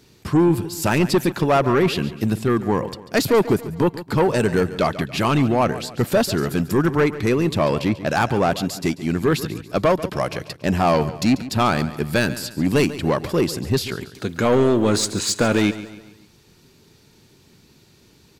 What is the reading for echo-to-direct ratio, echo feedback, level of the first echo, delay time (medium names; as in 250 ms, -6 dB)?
-14.0 dB, 45%, -15.0 dB, 141 ms